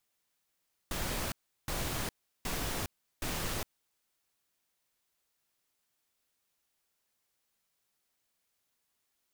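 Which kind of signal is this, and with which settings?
noise bursts pink, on 0.41 s, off 0.36 s, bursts 4, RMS -35 dBFS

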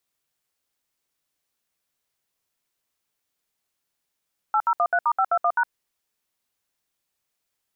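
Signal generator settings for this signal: DTMF "8013*521#", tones 62 ms, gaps 67 ms, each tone -20 dBFS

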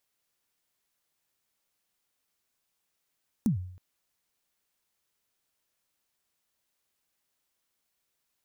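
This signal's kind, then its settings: kick drum length 0.32 s, from 250 Hz, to 91 Hz, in 114 ms, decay 0.64 s, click on, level -19 dB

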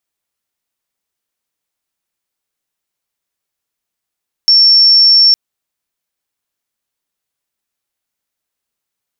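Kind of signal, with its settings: tone sine 5.44 kHz -4 dBFS 0.86 s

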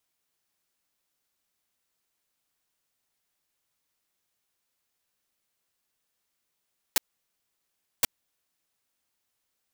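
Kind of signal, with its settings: noise bursts white, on 0.02 s, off 1.05 s, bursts 2, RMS -20.5 dBFS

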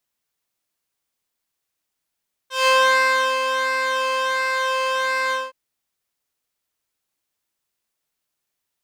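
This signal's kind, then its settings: synth patch with pulse-width modulation C5, interval -12 st, detune 3 cents, oscillator 2 level -18 dB, sub -27.5 dB, noise -14 dB, filter bandpass, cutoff 1.2 kHz, Q 0.73, filter envelope 1.5 oct, attack 167 ms, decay 0.72 s, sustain -7.5 dB, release 0.20 s, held 2.82 s, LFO 1.4 Hz, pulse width 22%, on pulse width 6%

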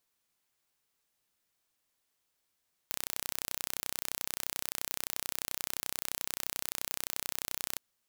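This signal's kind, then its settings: pulse train 31.5 per s, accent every 0, -7 dBFS 4.88 s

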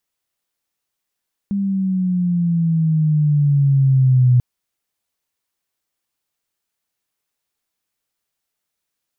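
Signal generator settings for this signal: gliding synth tone sine, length 2.89 s, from 201 Hz, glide -8.5 st, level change +8 dB, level -9 dB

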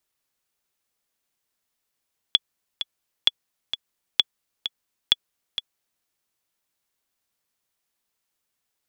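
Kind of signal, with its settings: metronome 130 bpm, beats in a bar 2, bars 4, 3.4 kHz, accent 10.5 dB -2.5 dBFS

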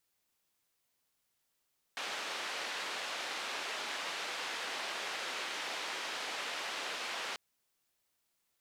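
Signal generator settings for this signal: noise band 440–3400 Hz, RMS -39.5 dBFS 5.39 s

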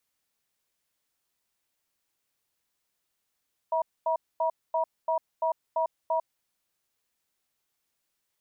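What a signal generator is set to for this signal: cadence 648 Hz, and 956 Hz, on 0.10 s, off 0.24 s, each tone -26 dBFS 2.63 s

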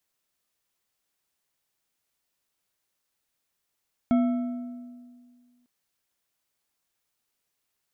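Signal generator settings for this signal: metal hit bar, lowest mode 245 Hz, decay 1.95 s, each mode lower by 9.5 dB, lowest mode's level -17 dB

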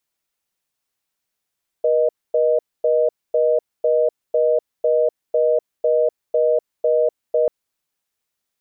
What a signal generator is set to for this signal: call progress tone reorder tone, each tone -16.5 dBFS 5.64 s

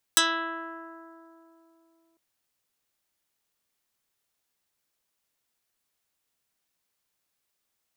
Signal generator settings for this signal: plucked string E4, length 2.00 s, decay 3.35 s, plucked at 0.14, dark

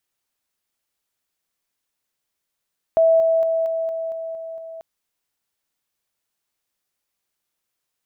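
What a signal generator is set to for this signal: level ladder 654 Hz -11.5 dBFS, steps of -3 dB, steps 8, 0.23 s 0.00 s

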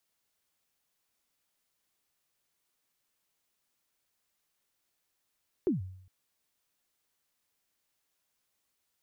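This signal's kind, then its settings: kick drum length 0.41 s, from 410 Hz, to 93 Hz, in 140 ms, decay 0.69 s, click off, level -22 dB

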